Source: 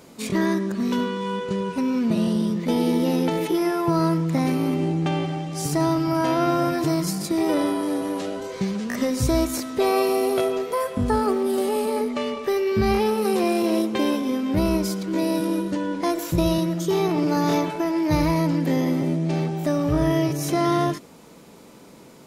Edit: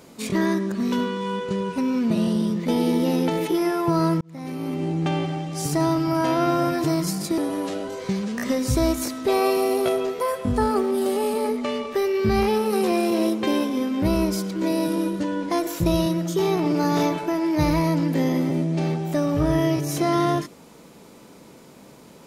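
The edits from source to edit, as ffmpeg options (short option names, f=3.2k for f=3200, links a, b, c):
-filter_complex "[0:a]asplit=3[a][b][c];[a]atrim=end=4.21,asetpts=PTS-STARTPTS,afade=t=out:st=4.206:d=0.004:c=hsin[d];[b]atrim=start=4.21:end=7.382,asetpts=PTS-STARTPTS,afade=t=in:d=0.86[e];[c]atrim=start=7.898[f];[d][e]concat=n=2:v=0:a=1[g];[g][f]acrossfade=d=0.004:c1=hsin:c2=hsin"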